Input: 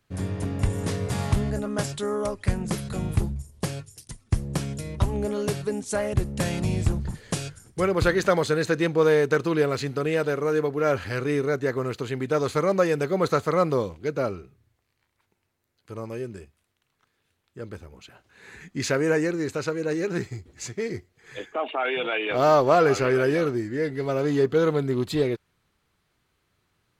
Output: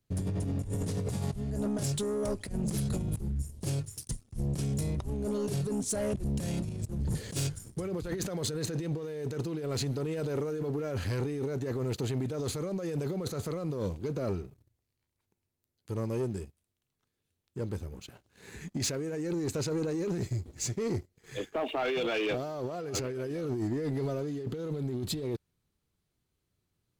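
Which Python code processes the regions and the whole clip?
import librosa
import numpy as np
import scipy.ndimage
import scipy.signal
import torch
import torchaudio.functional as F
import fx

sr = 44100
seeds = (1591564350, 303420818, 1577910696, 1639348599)

y = fx.chain(x, sr, fx.highpass(hz=55.0, slope=6),
    fx.over_compress(threshold_db=-33.0, ratio=-0.5),
    fx.clip_hard(threshold_db=-27.0), at=(6.69, 7.47))
y = fx.peak_eq(y, sr, hz=1500.0, db=-12.0, octaves=2.8)
y = fx.over_compress(y, sr, threshold_db=-33.0, ratio=-1.0)
y = fx.leveller(y, sr, passes=2)
y = y * librosa.db_to_amplitude(-6.0)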